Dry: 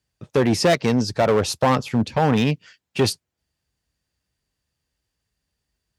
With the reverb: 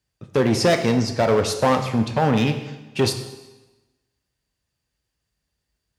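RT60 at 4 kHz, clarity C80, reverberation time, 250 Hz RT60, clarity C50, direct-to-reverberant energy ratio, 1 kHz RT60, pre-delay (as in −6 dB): 1.0 s, 10.5 dB, 1.1 s, 1.1 s, 8.5 dB, 6.5 dB, 1.1 s, 7 ms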